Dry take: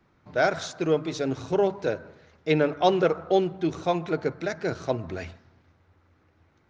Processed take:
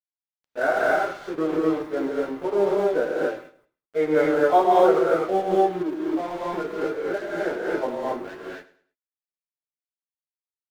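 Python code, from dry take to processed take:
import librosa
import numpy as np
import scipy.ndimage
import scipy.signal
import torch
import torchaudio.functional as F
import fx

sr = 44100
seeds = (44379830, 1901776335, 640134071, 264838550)

p1 = scipy.signal.sosfilt(scipy.signal.butter(4, 230.0, 'highpass', fs=sr, output='sos'), x)
p2 = fx.peak_eq(p1, sr, hz=1300.0, db=2.0, octaves=1.0)
p3 = fx.level_steps(p2, sr, step_db=9)
p4 = p2 + (p3 * librosa.db_to_amplitude(-1.0))
p5 = scipy.signal.savgol_filter(p4, 41, 4, mode='constant')
p6 = fx.quant_dither(p5, sr, seeds[0], bits=10, dither='none')
p7 = fx.stretch_vocoder_free(p6, sr, factor=1.6)
p8 = fx.tremolo_shape(p7, sr, shape='triangle', hz=5.1, depth_pct=50)
p9 = np.sign(p8) * np.maximum(np.abs(p8) - 10.0 ** (-40.5 / 20.0), 0.0)
p10 = p9 + fx.echo_feedback(p9, sr, ms=104, feedback_pct=30, wet_db=-17, dry=0)
p11 = fx.rev_gated(p10, sr, seeds[1], gate_ms=290, shape='rising', drr_db=-3.5)
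y = p11 * librosa.db_to_amplitude(1.0)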